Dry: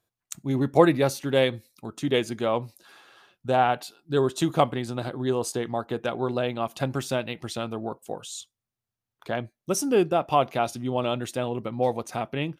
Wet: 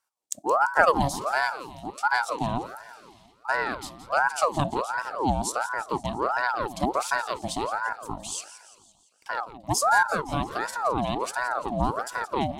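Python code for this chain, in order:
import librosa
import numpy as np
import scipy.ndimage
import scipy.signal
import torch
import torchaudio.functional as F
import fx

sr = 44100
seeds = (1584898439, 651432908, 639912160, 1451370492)

y = fx.graphic_eq(x, sr, hz=(250, 1000, 2000, 4000, 8000), db=(11, -11, -6, 4, 8))
y = fx.rider(y, sr, range_db=3, speed_s=2.0)
y = fx.cheby_harmonics(y, sr, harmonics=(3,), levels_db=(-21,), full_scale_db=-3.0)
y = fx.echo_feedback(y, sr, ms=171, feedback_pct=55, wet_db=-14)
y = fx.ring_lfo(y, sr, carrier_hz=830.0, swing_pct=50, hz=1.4)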